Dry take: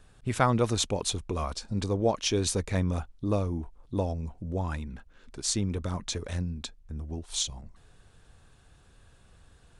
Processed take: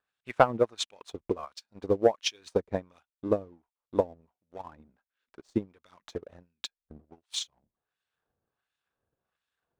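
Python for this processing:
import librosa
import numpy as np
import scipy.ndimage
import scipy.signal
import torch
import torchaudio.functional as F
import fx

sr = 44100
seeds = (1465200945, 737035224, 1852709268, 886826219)

y = fx.filter_lfo_bandpass(x, sr, shape='sine', hz=1.4, low_hz=390.0, high_hz=2900.0, q=0.85)
y = fx.leveller(y, sr, passes=1)
y = fx.transient(y, sr, attack_db=10, sustain_db=-4)
y = fx.upward_expand(y, sr, threshold_db=-40.0, expansion=1.5)
y = F.gain(torch.from_numpy(y), -2.5).numpy()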